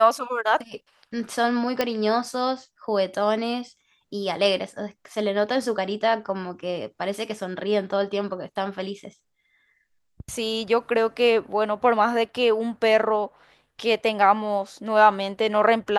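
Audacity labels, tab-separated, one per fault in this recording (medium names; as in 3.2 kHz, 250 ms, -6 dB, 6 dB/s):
1.810000	1.810000	pop -8 dBFS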